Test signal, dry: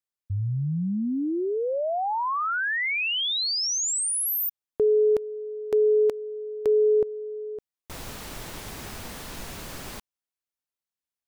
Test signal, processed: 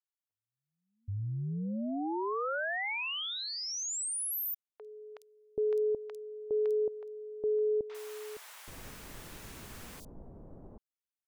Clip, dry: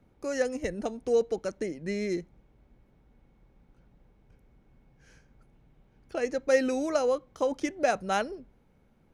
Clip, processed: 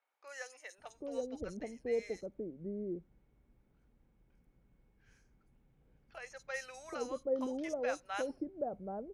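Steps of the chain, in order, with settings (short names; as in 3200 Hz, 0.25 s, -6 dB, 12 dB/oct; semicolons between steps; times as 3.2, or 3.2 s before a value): three bands offset in time mids, highs, lows 50/780 ms, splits 740/4400 Hz; gain -8.5 dB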